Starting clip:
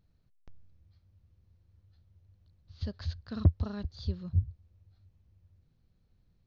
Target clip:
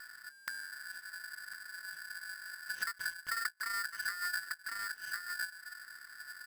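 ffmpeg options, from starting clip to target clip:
-filter_complex "[0:a]equalizer=f=125:t=o:w=1:g=10,equalizer=f=250:t=o:w=1:g=11,equalizer=f=500:t=o:w=1:g=10,equalizer=f=2k:t=o:w=1:g=10,aecho=1:1:1055:0.133,acrossover=split=270|670|3200[a][b][c][d];[a]acompressor=threshold=-29dB:ratio=4[e];[b]acompressor=threshold=-34dB:ratio=4[f];[c]acompressor=threshold=-60dB:ratio=4[g];[d]acompressor=threshold=-60dB:ratio=4[h];[e][f][g][h]amix=inputs=4:normalize=0,equalizer=f=140:t=o:w=0.51:g=10.5,acompressor=threshold=-43dB:ratio=5,aeval=exprs='val(0)*sgn(sin(2*PI*1600*n/s))':c=same,volume=6dB"

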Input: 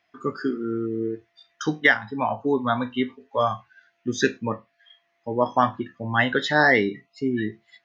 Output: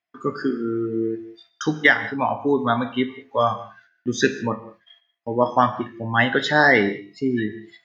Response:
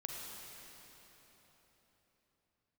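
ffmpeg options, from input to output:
-filter_complex "[0:a]agate=range=-19dB:threshold=-56dB:ratio=16:detection=peak,asplit=2[a][b];[1:a]atrim=start_sample=2205,afade=t=out:st=0.41:d=0.01,atrim=end_sample=18522,asetrate=74970,aresample=44100[c];[b][c]afir=irnorm=-1:irlink=0,volume=-1.5dB[d];[a][d]amix=inputs=2:normalize=0"

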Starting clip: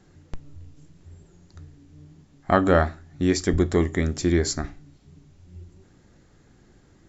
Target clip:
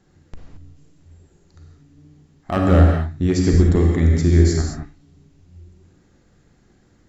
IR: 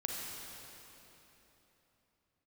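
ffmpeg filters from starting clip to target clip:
-filter_complex "[0:a]aeval=exprs='clip(val(0),-1,0.224)':c=same,asettb=1/sr,asplit=3[a][b][c];[a]atrim=end=2.564[d];[b]atrim=start=2.56:end=4.62,asetpts=PTS-STARTPTS,afade=t=in:d=0.004:c=qsin,afade=t=out:st=2.056:d=0.004:c=qsin,equalizer=f=68:w=0.31:g=11[e];[c]atrim=start=4.616[f];[d][e]acrossfade=d=0.004:c1=hsin:c2=qsin[g];[g][f]acrossfade=d=0.004:c1=qsin:c2=hsin[h];[1:a]atrim=start_sample=2205,afade=t=out:st=0.28:d=0.01,atrim=end_sample=12789[i];[h][i]afir=irnorm=-1:irlink=0,volume=-2dB"

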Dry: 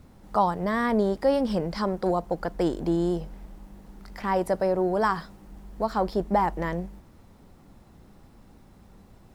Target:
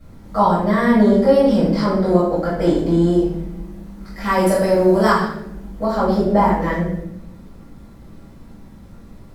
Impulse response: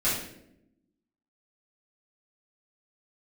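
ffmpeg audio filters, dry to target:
-filter_complex "[0:a]asettb=1/sr,asplit=3[a][b][c];[a]atrim=end=4.214[d];[b]atrim=start=4.21:end=5.11,asetpts=PTS-STARTPTS,afade=t=in:d=0.004:c=qsin,afade=t=out:st=0.896:d=0.004:c=qsin,highshelf=f=2.7k:g=10[e];[c]atrim=start=5.106[f];[d][e]acrossfade=d=0.004:c1=hsin:c2=qsin[g];[g][f]acrossfade=d=0.004:c1=qsin:c2=hsin[h];[1:a]atrim=start_sample=2205,asetrate=40572,aresample=44100[i];[h][i]afir=irnorm=-1:irlink=0,volume=-3.5dB"

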